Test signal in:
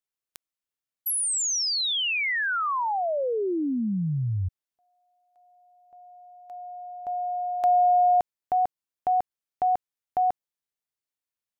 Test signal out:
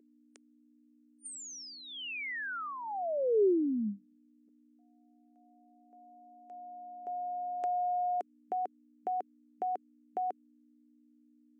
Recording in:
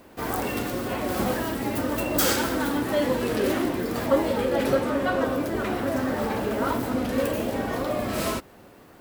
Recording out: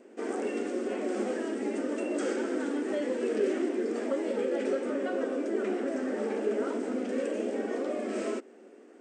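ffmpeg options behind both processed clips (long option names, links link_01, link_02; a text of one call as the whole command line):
ffmpeg -i in.wav -filter_complex "[0:a]aeval=exprs='val(0)+0.00355*(sin(2*PI*60*n/s)+sin(2*PI*2*60*n/s)/2+sin(2*PI*3*60*n/s)/3+sin(2*PI*4*60*n/s)/4+sin(2*PI*5*60*n/s)/5)':channel_layout=same,afftfilt=real='re*between(b*sr/4096,200,9000)':imag='im*between(b*sr/4096,200,9000)':win_size=4096:overlap=0.75,acrossover=split=1200|2900[link_01][link_02][link_03];[link_01]acompressor=threshold=-25dB:ratio=4[link_04];[link_02]acompressor=threshold=-34dB:ratio=4[link_05];[link_03]acompressor=threshold=-40dB:ratio=4[link_06];[link_04][link_05][link_06]amix=inputs=3:normalize=0,equalizer=frequency=400:width_type=o:width=0.67:gain=10,equalizer=frequency=1000:width_type=o:width=0.67:gain=-9,equalizer=frequency=4000:width_type=o:width=0.67:gain=-10,volume=-6dB" out.wav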